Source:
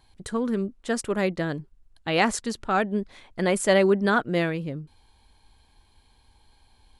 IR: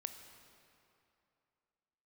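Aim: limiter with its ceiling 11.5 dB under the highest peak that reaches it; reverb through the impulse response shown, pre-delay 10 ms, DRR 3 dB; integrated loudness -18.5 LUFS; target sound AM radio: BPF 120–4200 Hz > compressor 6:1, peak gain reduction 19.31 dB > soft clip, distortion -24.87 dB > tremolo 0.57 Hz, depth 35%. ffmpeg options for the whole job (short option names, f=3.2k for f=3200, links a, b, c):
-filter_complex "[0:a]alimiter=limit=-18.5dB:level=0:latency=1,asplit=2[a][b];[1:a]atrim=start_sample=2205,adelay=10[c];[b][c]afir=irnorm=-1:irlink=0,volume=-0.5dB[d];[a][d]amix=inputs=2:normalize=0,highpass=120,lowpass=4.2k,acompressor=threshold=-40dB:ratio=6,asoftclip=threshold=-30.5dB,tremolo=f=0.57:d=0.35,volume=27dB"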